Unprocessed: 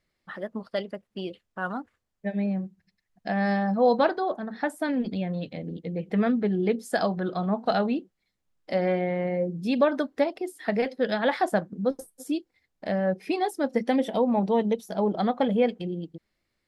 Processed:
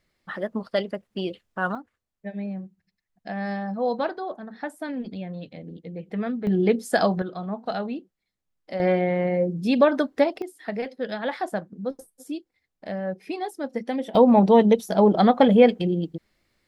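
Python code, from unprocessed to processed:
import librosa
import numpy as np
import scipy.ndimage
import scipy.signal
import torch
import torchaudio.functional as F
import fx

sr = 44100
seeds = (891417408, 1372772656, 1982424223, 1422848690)

y = fx.gain(x, sr, db=fx.steps((0.0, 5.0), (1.75, -4.5), (6.47, 4.5), (7.22, -4.5), (8.8, 4.0), (10.42, -4.0), (14.15, 8.0)))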